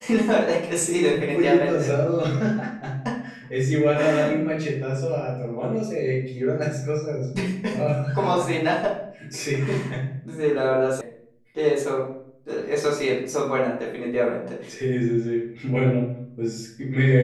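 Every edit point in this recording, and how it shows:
11.01 sound cut off

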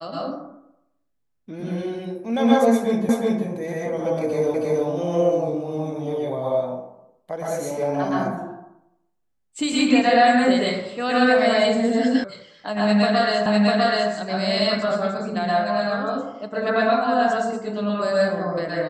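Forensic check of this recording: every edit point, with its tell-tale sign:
3.09 repeat of the last 0.37 s
4.54 repeat of the last 0.32 s
12.24 sound cut off
13.46 repeat of the last 0.65 s

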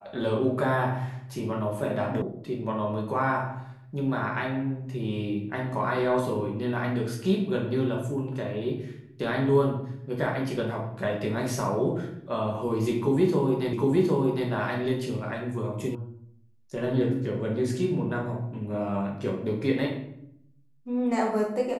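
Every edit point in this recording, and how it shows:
2.22 sound cut off
13.73 repeat of the last 0.76 s
15.95 sound cut off

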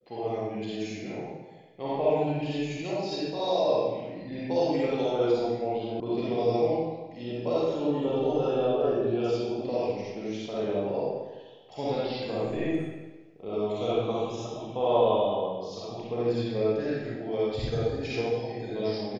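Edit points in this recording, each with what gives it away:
6 sound cut off

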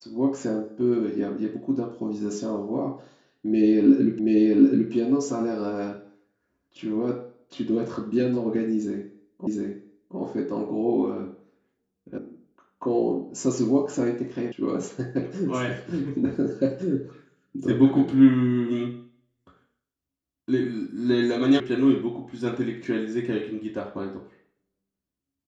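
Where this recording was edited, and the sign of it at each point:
4.19 repeat of the last 0.73 s
9.47 repeat of the last 0.71 s
12.18 sound cut off
14.52 sound cut off
21.6 sound cut off

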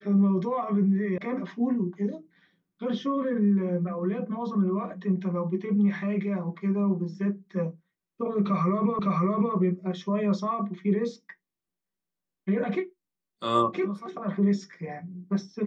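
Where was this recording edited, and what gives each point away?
1.18 sound cut off
8.99 repeat of the last 0.56 s

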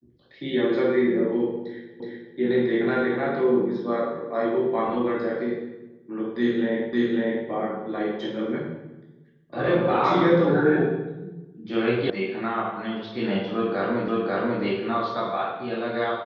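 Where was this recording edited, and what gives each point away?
2 repeat of the last 0.37 s
6.93 repeat of the last 0.55 s
12.1 sound cut off
14.08 repeat of the last 0.54 s

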